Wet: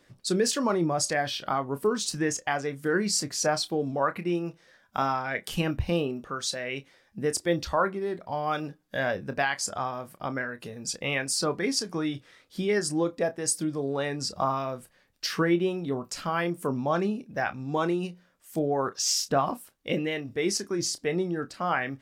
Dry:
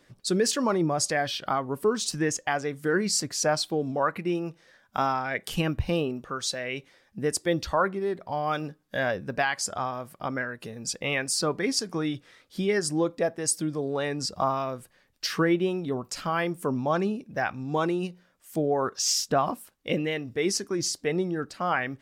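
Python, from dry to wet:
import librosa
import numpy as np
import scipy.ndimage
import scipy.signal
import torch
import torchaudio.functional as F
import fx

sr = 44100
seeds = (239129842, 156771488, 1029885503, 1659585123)

y = fx.doubler(x, sr, ms=29.0, db=-12)
y = y * librosa.db_to_amplitude(-1.0)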